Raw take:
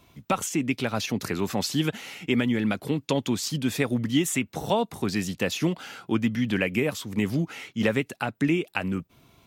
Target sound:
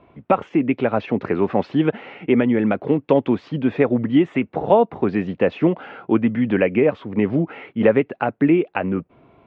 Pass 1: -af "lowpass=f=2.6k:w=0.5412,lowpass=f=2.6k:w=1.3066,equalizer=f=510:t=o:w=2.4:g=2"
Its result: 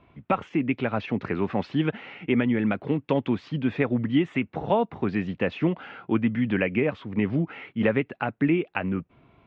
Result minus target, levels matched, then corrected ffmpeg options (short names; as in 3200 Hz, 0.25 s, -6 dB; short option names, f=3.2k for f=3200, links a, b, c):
500 Hz band -2.5 dB
-af "lowpass=f=2.6k:w=0.5412,lowpass=f=2.6k:w=1.3066,equalizer=f=510:t=o:w=2.4:g=11.5"